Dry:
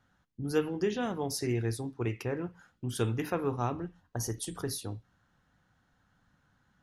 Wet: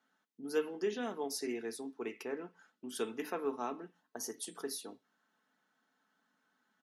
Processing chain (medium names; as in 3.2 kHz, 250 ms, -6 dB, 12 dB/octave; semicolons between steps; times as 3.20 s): Chebyshev high-pass 270 Hz, order 3; comb 4.6 ms, depth 44%; 2.33–2.84 s: low-pass 9.1 kHz; trim -5 dB